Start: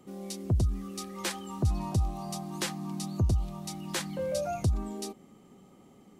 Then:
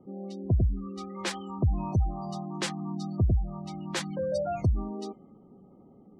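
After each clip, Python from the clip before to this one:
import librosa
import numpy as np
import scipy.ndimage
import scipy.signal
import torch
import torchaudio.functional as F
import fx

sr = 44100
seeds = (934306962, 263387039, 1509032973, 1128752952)

y = fx.spec_gate(x, sr, threshold_db=-25, keep='strong')
y = fx.env_lowpass(y, sr, base_hz=700.0, full_db=-26.5)
y = y * librosa.db_to_amplitude(2.0)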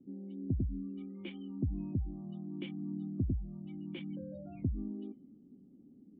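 y = fx.formant_cascade(x, sr, vowel='i')
y = y * librosa.db_to_amplitude(2.0)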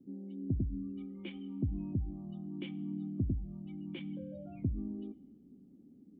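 y = fx.rev_double_slope(x, sr, seeds[0], early_s=0.87, late_s=3.5, knee_db=-20, drr_db=17.0)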